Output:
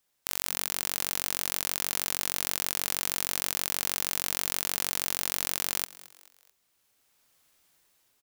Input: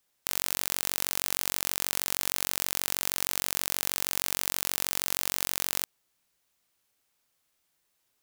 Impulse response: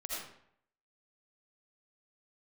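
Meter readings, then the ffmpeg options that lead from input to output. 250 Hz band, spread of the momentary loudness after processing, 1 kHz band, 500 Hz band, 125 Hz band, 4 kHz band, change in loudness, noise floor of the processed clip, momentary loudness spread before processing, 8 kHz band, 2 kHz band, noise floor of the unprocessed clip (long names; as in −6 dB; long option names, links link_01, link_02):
0.0 dB, 1 LU, 0.0 dB, 0.0 dB, 0.0 dB, 0.0 dB, 0.0 dB, −74 dBFS, 1 LU, 0.0 dB, 0.0 dB, −76 dBFS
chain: -filter_complex "[0:a]asplit=4[link_01][link_02][link_03][link_04];[link_02]adelay=219,afreqshift=130,volume=-19dB[link_05];[link_03]adelay=438,afreqshift=260,volume=-26.1dB[link_06];[link_04]adelay=657,afreqshift=390,volume=-33.3dB[link_07];[link_01][link_05][link_06][link_07]amix=inputs=4:normalize=0,dynaudnorm=framelen=370:gausssize=7:maxgain=12.5dB,volume=-1dB"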